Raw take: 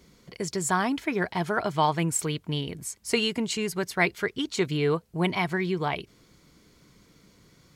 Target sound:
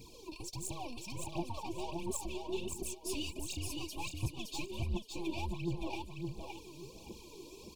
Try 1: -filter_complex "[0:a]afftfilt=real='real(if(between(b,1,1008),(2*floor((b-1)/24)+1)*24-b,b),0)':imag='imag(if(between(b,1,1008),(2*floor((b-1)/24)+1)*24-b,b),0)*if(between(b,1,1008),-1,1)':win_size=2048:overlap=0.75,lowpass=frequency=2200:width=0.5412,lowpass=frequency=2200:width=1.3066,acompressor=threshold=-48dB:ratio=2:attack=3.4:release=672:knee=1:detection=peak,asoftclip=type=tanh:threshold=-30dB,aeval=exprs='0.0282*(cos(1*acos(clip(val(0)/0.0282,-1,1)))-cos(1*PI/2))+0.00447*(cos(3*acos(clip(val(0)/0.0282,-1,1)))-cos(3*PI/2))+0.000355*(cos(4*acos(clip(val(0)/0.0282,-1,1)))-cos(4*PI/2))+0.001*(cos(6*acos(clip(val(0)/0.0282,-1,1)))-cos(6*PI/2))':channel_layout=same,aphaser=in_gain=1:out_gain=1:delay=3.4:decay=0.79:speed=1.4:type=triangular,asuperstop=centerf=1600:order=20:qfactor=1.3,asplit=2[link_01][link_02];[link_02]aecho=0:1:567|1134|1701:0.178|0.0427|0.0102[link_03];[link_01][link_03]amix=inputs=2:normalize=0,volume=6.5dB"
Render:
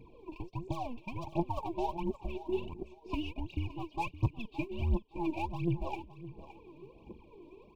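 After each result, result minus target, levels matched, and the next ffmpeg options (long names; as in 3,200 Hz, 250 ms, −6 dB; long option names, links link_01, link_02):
soft clipping: distortion −15 dB; echo-to-direct −11 dB; 2,000 Hz band −3.5 dB
-filter_complex "[0:a]afftfilt=real='real(if(between(b,1,1008),(2*floor((b-1)/24)+1)*24-b,b),0)':imag='imag(if(between(b,1,1008),(2*floor((b-1)/24)+1)*24-b,b),0)*if(between(b,1,1008),-1,1)':win_size=2048:overlap=0.75,lowpass=frequency=2200:width=0.5412,lowpass=frequency=2200:width=1.3066,acompressor=threshold=-48dB:ratio=2:attack=3.4:release=672:knee=1:detection=peak,asoftclip=type=tanh:threshold=-42dB,aeval=exprs='0.0282*(cos(1*acos(clip(val(0)/0.0282,-1,1)))-cos(1*PI/2))+0.00447*(cos(3*acos(clip(val(0)/0.0282,-1,1)))-cos(3*PI/2))+0.000355*(cos(4*acos(clip(val(0)/0.0282,-1,1)))-cos(4*PI/2))+0.001*(cos(6*acos(clip(val(0)/0.0282,-1,1)))-cos(6*PI/2))':channel_layout=same,aphaser=in_gain=1:out_gain=1:delay=3.4:decay=0.79:speed=1.4:type=triangular,asuperstop=centerf=1600:order=20:qfactor=1.3,asplit=2[link_01][link_02];[link_02]aecho=0:1:567|1134|1701:0.178|0.0427|0.0102[link_03];[link_01][link_03]amix=inputs=2:normalize=0,volume=6.5dB"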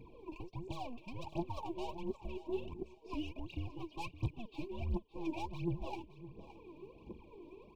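echo-to-direct −11 dB; 2,000 Hz band −3.5 dB
-filter_complex "[0:a]afftfilt=real='real(if(between(b,1,1008),(2*floor((b-1)/24)+1)*24-b,b),0)':imag='imag(if(between(b,1,1008),(2*floor((b-1)/24)+1)*24-b,b),0)*if(between(b,1,1008),-1,1)':win_size=2048:overlap=0.75,lowpass=frequency=2200:width=0.5412,lowpass=frequency=2200:width=1.3066,acompressor=threshold=-48dB:ratio=2:attack=3.4:release=672:knee=1:detection=peak,asoftclip=type=tanh:threshold=-42dB,aeval=exprs='0.0282*(cos(1*acos(clip(val(0)/0.0282,-1,1)))-cos(1*PI/2))+0.00447*(cos(3*acos(clip(val(0)/0.0282,-1,1)))-cos(3*PI/2))+0.000355*(cos(4*acos(clip(val(0)/0.0282,-1,1)))-cos(4*PI/2))+0.001*(cos(6*acos(clip(val(0)/0.0282,-1,1)))-cos(6*PI/2))':channel_layout=same,aphaser=in_gain=1:out_gain=1:delay=3.4:decay=0.79:speed=1.4:type=triangular,asuperstop=centerf=1600:order=20:qfactor=1.3,asplit=2[link_01][link_02];[link_02]aecho=0:1:567|1134|1701:0.631|0.151|0.0363[link_03];[link_01][link_03]amix=inputs=2:normalize=0,volume=6.5dB"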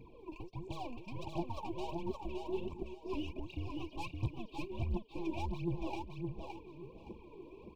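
2,000 Hz band −3.0 dB
-filter_complex "[0:a]afftfilt=real='real(if(between(b,1,1008),(2*floor((b-1)/24)+1)*24-b,b),0)':imag='imag(if(between(b,1,1008),(2*floor((b-1)/24)+1)*24-b,b),0)*if(between(b,1,1008),-1,1)':win_size=2048:overlap=0.75,acompressor=threshold=-48dB:ratio=2:attack=3.4:release=672:knee=1:detection=peak,asoftclip=type=tanh:threshold=-42dB,aeval=exprs='0.0282*(cos(1*acos(clip(val(0)/0.0282,-1,1)))-cos(1*PI/2))+0.00447*(cos(3*acos(clip(val(0)/0.0282,-1,1)))-cos(3*PI/2))+0.000355*(cos(4*acos(clip(val(0)/0.0282,-1,1)))-cos(4*PI/2))+0.001*(cos(6*acos(clip(val(0)/0.0282,-1,1)))-cos(6*PI/2))':channel_layout=same,aphaser=in_gain=1:out_gain=1:delay=3.4:decay=0.79:speed=1.4:type=triangular,asuperstop=centerf=1600:order=20:qfactor=1.3,asplit=2[link_01][link_02];[link_02]aecho=0:1:567|1134|1701:0.631|0.151|0.0363[link_03];[link_01][link_03]amix=inputs=2:normalize=0,volume=6.5dB"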